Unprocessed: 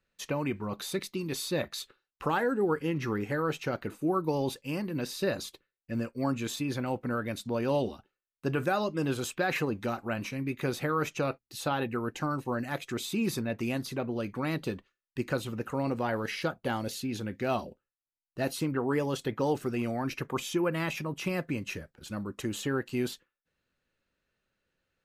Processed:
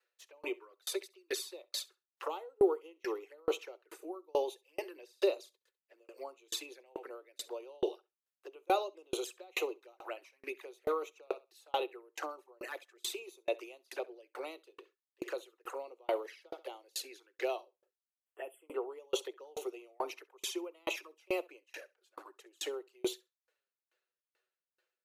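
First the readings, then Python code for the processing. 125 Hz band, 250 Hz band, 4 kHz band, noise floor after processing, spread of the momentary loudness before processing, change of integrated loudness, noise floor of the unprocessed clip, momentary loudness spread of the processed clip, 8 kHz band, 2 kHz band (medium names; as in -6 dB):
under -30 dB, -14.5 dB, -3.5 dB, under -85 dBFS, 7 LU, -7.0 dB, under -85 dBFS, 15 LU, -4.0 dB, -10.0 dB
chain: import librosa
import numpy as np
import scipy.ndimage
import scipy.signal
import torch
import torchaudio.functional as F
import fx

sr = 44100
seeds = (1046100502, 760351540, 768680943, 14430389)

y = fx.env_flanger(x, sr, rest_ms=8.3, full_db=-28.0)
y = fx.spec_erase(y, sr, start_s=18.13, length_s=0.58, low_hz=3500.0, high_hz=7300.0)
y = scipy.signal.sosfilt(scipy.signal.butter(12, 350.0, 'highpass', fs=sr, output='sos'), y)
y = fx.echo_feedback(y, sr, ms=67, feedback_pct=28, wet_db=-17.0)
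y = fx.tremolo_decay(y, sr, direction='decaying', hz=2.3, depth_db=38)
y = y * librosa.db_to_amplitude(6.5)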